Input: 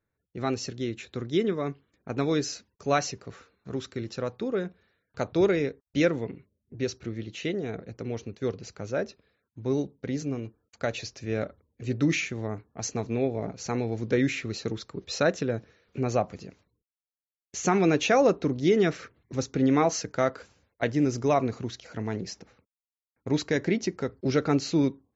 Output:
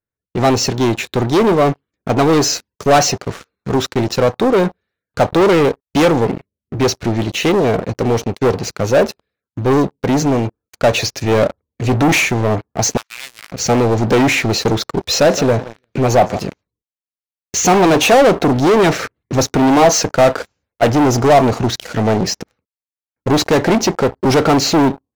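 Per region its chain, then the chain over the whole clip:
0:12.97–0:13.52: gap after every zero crossing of 0.13 ms + Butterworth high-pass 1,400 Hz + spectral tilt −2.5 dB per octave
0:15.06–0:16.39: repeating echo 168 ms, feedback 32%, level −23 dB + saturating transformer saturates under 600 Hz
whole clip: leveller curve on the samples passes 5; dynamic equaliser 740 Hz, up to +7 dB, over −33 dBFS, Q 1.3; level +1.5 dB

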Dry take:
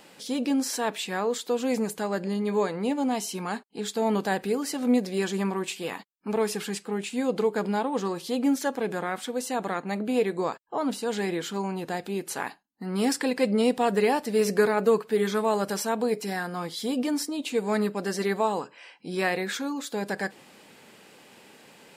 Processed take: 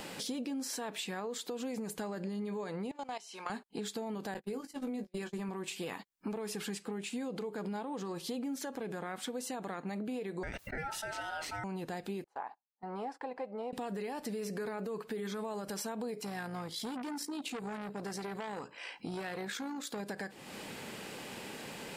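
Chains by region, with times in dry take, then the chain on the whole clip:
0:02.91–0:03.50: one scale factor per block 7 bits + band-pass filter 670–6,700 Hz + output level in coarse steps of 17 dB
0:04.34–0:05.49: mains-hum notches 60/120/180/240/300/360 Hz + noise gate −30 dBFS, range −38 dB + double-tracking delay 19 ms −10 dB
0:10.43–0:11.64: ring modulation 1,100 Hz + level that may fall only so fast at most 66 dB per second
0:12.24–0:13.73: resonant band-pass 820 Hz, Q 3 + noise gate −52 dBFS, range −19 dB
0:16.21–0:20.00: amplitude modulation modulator 56 Hz, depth 25% + saturating transformer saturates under 1,800 Hz
whole clip: low-shelf EQ 100 Hz +10.5 dB; brickwall limiter −22.5 dBFS; downward compressor 4 to 1, threshold −47 dBFS; level +7.5 dB

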